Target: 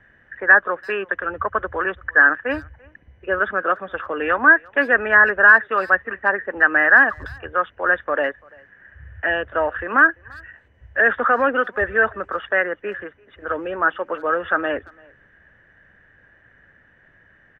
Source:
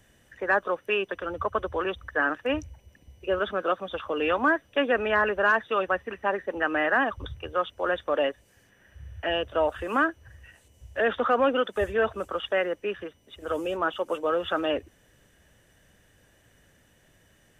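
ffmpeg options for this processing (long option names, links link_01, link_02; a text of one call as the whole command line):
ffmpeg -i in.wav -filter_complex "[0:a]lowpass=frequency=1700:width_type=q:width=4.7,asplit=2[link_01][link_02];[link_02]adelay=340,highpass=300,lowpass=3400,asoftclip=type=hard:threshold=-11dB,volume=-26dB[link_03];[link_01][link_03]amix=inputs=2:normalize=0,volume=1.5dB" out.wav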